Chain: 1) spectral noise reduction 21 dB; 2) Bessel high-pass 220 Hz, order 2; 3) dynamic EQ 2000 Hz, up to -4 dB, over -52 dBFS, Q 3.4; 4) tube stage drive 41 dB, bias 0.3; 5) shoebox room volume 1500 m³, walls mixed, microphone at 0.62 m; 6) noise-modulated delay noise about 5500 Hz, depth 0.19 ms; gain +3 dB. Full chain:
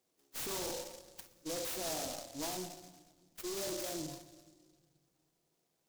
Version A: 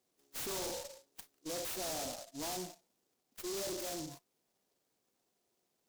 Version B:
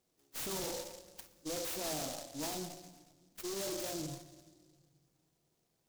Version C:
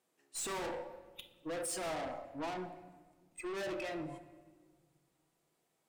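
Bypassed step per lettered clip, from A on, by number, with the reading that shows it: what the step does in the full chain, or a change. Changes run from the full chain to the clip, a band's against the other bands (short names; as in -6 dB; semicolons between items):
5, momentary loudness spread change -3 LU; 2, 125 Hz band +3.5 dB; 6, 4 kHz band -6.5 dB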